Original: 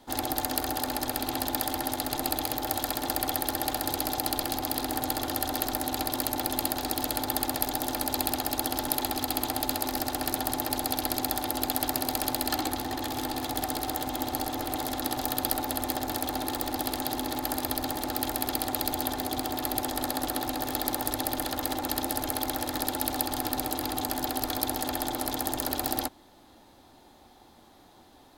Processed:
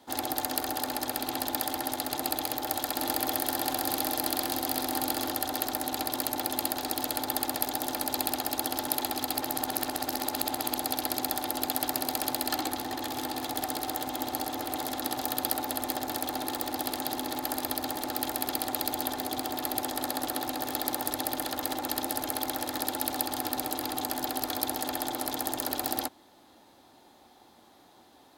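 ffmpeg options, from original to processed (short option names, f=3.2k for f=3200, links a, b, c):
-filter_complex "[0:a]asettb=1/sr,asplit=3[a][b][c];[a]atrim=end=2.274[d];[b]atrim=start=2.27:end=5.31,asetpts=PTS-STARTPTS,afade=t=in:d=0.004:c=qsin,afade=t=out:st=3.036:d=0.004:c=qsin,aecho=1:1:689:0.596,atrim=end_sample=134064[e];[c]atrim=start=5.306[f];[d][e]acrossfade=d=0.004:c1=hsin:c2=qsin[g];[g][f]acrossfade=d=0.004:c1=qsin:c2=hsin,asplit=3[h][i][j];[h]atrim=end=9.362[k];[i]atrim=start=9.358:end=10.752,asetpts=PTS-STARTPTS,areverse[l];[j]atrim=start=10.748[m];[k][l]acrossfade=d=0.004:c1=hsin:c2=hsin[n];[n][m]acrossfade=d=0.004:c1=hsin:c2=hsin,highpass=f=190:p=1,volume=-1dB"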